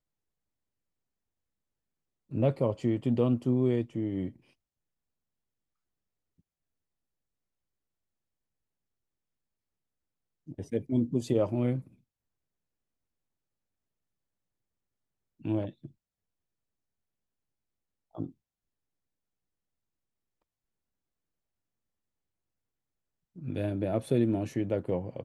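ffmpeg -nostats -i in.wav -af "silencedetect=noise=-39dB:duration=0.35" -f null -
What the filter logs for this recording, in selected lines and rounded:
silence_start: 0.00
silence_end: 2.32 | silence_duration: 2.32
silence_start: 4.30
silence_end: 10.48 | silence_duration: 6.18
silence_start: 11.81
silence_end: 15.45 | silence_duration: 3.65
silence_start: 15.86
silence_end: 18.15 | silence_duration: 2.29
silence_start: 18.29
silence_end: 23.38 | silence_duration: 5.09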